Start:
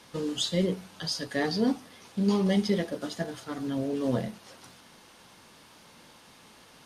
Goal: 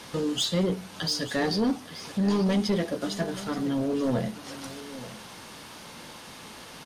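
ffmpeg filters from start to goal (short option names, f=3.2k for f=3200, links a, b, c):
-filter_complex "[0:a]asplit=2[a][b];[b]acompressor=threshold=-43dB:ratio=6,volume=2.5dB[c];[a][c]amix=inputs=2:normalize=0,asoftclip=type=tanh:threshold=-21.5dB,aecho=1:1:879:0.178,volume=2.5dB"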